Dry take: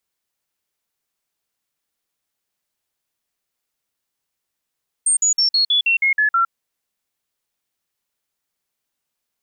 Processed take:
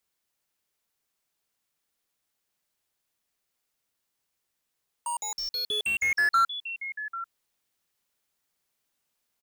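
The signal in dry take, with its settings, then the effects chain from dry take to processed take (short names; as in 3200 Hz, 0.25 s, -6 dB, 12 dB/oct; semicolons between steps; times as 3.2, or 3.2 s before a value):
stepped sine 8630 Hz down, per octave 3, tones 9, 0.11 s, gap 0.05 s -13 dBFS
vocal rider 2 s; echo 0.792 s -18 dB; slew limiter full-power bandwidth 140 Hz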